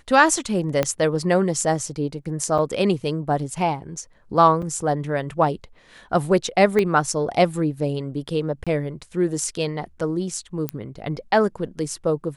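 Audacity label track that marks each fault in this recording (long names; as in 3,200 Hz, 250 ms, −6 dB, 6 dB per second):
0.830000	0.830000	click −7 dBFS
2.580000	2.590000	drop-out 5.8 ms
4.620000	4.630000	drop-out 5.3 ms
6.790000	6.790000	click −10 dBFS
8.640000	8.670000	drop-out 26 ms
10.690000	10.690000	click −10 dBFS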